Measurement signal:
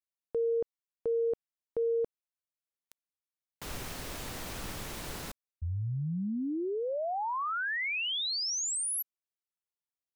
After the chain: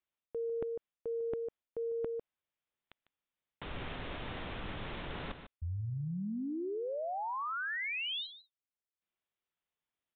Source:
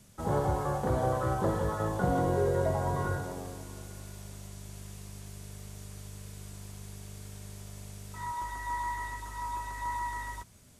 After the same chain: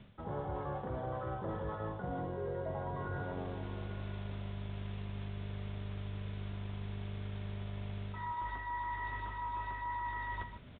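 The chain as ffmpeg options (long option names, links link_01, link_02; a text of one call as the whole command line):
ffmpeg -i in.wav -af "aecho=1:1:150:0.188,areverse,acompressor=threshold=-41dB:ratio=8:attack=6.4:release=457:knee=1:detection=peak,areverse,aresample=8000,aresample=44100,volume=6dB" out.wav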